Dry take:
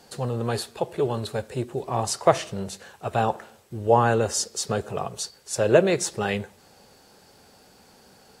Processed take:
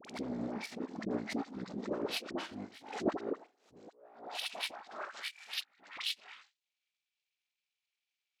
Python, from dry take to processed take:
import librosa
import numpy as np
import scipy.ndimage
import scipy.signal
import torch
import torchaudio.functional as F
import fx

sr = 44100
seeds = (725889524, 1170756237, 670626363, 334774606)

y = fx.pitch_bins(x, sr, semitones=-11.5)
y = fx.over_compress(y, sr, threshold_db=-28.0, ratio=-0.5)
y = fx.peak_eq(y, sr, hz=710.0, db=8.5, octaves=1.1)
y = fx.power_curve(y, sr, exponent=2.0)
y = fx.filter_sweep_highpass(y, sr, from_hz=240.0, to_hz=2800.0, start_s=3.08, end_s=6.02, q=1.6)
y = fx.dispersion(y, sr, late='highs', ms=50.0, hz=970.0)
y = fx.pre_swell(y, sr, db_per_s=110.0)
y = F.gain(torch.from_numpy(y), -2.0).numpy()